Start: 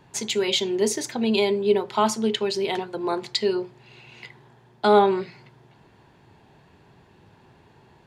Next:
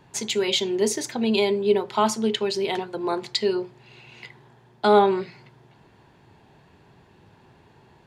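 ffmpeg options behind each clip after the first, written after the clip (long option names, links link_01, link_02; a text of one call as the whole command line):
ffmpeg -i in.wav -af anull out.wav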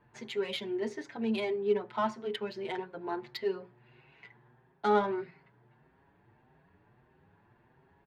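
ffmpeg -i in.wav -filter_complex "[0:a]equalizer=frequency=1700:width_type=o:width=0.92:gain=6.5,adynamicsmooth=sensitivity=0.5:basefreq=2300,asplit=2[link_01][link_02];[link_02]adelay=6.5,afreqshift=1.6[link_03];[link_01][link_03]amix=inputs=2:normalize=1,volume=-7.5dB" out.wav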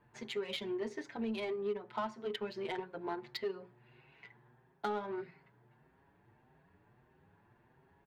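ffmpeg -i in.wav -af "acompressor=threshold=-34dB:ratio=5,aeval=exprs='0.0596*(cos(1*acos(clip(val(0)/0.0596,-1,1)))-cos(1*PI/2))+0.00211*(cos(7*acos(clip(val(0)/0.0596,-1,1)))-cos(7*PI/2))':channel_layout=same" out.wav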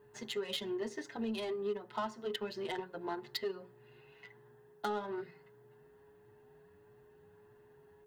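ffmpeg -i in.wav -filter_complex "[0:a]acrossover=split=950[link_01][link_02];[link_02]crystalizer=i=1.5:c=0[link_03];[link_01][link_03]amix=inputs=2:normalize=0,aeval=exprs='val(0)+0.001*sin(2*PI*420*n/s)':channel_layout=same,asuperstop=centerf=2300:order=4:qfactor=8" out.wav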